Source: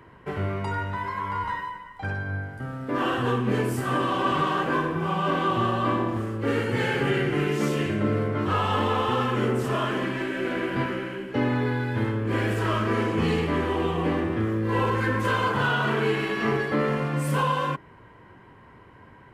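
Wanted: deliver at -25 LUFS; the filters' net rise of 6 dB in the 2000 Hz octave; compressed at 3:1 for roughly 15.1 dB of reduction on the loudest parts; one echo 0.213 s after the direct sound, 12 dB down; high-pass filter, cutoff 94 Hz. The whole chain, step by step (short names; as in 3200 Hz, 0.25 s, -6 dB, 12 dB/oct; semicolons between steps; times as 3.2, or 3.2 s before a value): HPF 94 Hz; bell 2000 Hz +8 dB; compressor 3:1, threshold -40 dBFS; echo 0.213 s -12 dB; gain +12.5 dB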